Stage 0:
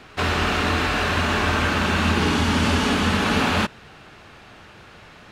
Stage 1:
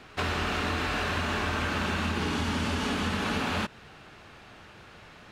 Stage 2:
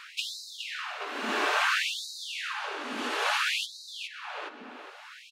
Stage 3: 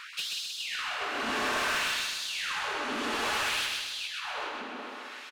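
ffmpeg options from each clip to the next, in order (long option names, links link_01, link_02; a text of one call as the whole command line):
ffmpeg -i in.wav -af "acompressor=threshold=-21dB:ratio=6,volume=-4.5dB" out.wav
ffmpeg -i in.wav -filter_complex "[0:a]tremolo=f=0.56:d=0.98,asplit=2[link_01][link_02];[link_02]adelay=414,lowpass=frequency=4400:poles=1,volume=-4.5dB,asplit=2[link_03][link_04];[link_04]adelay=414,lowpass=frequency=4400:poles=1,volume=0.4,asplit=2[link_05][link_06];[link_06]adelay=414,lowpass=frequency=4400:poles=1,volume=0.4,asplit=2[link_07][link_08];[link_08]adelay=414,lowpass=frequency=4400:poles=1,volume=0.4,asplit=2[link_09][link_10];[link_10]adelay=414,lowpass=frequency=4400:poles=1,volume=0.4[link_11];[link_01][link_03][link_05][link_07][link_09][link_11]amix=inputs=6:normalize=0,afftfilt=real='re*gte(b*sr/1024,210*pow(3800/210,0.5+0.5*sin(2*PI*0.59*pts/sr)))':imag='im*gte(b*sr/1024,210*pow(3800/210,0.5+0.5*sin(2*PI*0.59*pts/sr)))':win_size=1024:overlap=0.75,volume=7dB" out.wav
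ffmpeg -i in.wav -filter_complex "[0:a]asplit=2[link_01][link_02];[link_02]aecho=0:1:184:0.316[link_03];[link_01][link_03]amix=inputs=2:normalize=0,asoftclip=type=tanh:threshold=-31dB,asplit=2[link_04][link_05];[link_05]aecho=0:1:129|258|387|516|645|774|903:0.631|0.322|0.164|0.0837|0.0427|0.0218|0.0111[link_06];[link_04][link_06]amix=inputs=2:normalize=0,volume=2.5dB" out.wav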